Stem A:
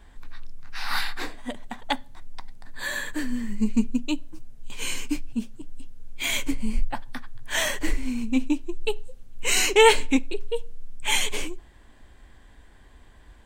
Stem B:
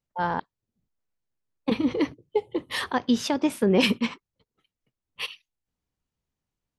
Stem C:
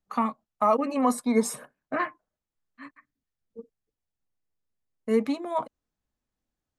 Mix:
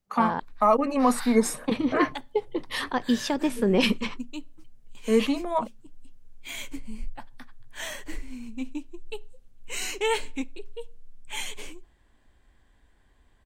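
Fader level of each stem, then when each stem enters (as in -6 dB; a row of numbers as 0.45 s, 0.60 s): -10.5 dB, -1.5 dB, +2.0 dB; 0.25 s, 0.00 s, 0.00 s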